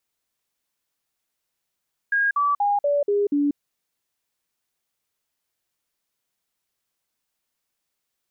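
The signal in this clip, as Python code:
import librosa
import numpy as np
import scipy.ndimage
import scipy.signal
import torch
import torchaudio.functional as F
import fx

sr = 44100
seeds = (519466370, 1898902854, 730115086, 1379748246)

y = fx.stepped_sweep(sr, from_hz=1630.0, direction='down', per_octave=2, tones=6, dwell_s=0.19, gap_s=0.05, level_db=-17.5)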